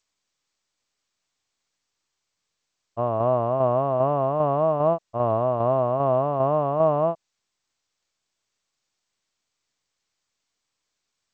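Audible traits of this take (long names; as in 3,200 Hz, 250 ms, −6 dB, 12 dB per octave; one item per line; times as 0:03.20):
tremolo saw down 2.5 Hz, depth 40%
G.722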